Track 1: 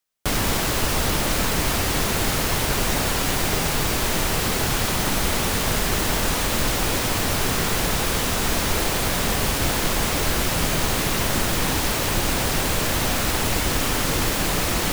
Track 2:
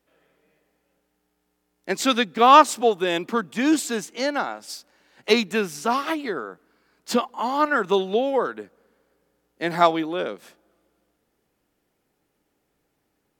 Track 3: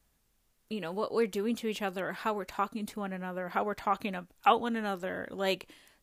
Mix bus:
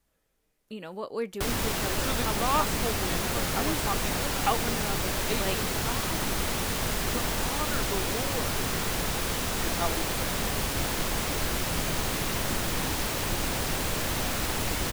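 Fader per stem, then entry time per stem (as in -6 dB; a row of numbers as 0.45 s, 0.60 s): -7.0 dB, -15.0 dB, -3.0 dB; 1.15 s, 0.00 s, 0.00 s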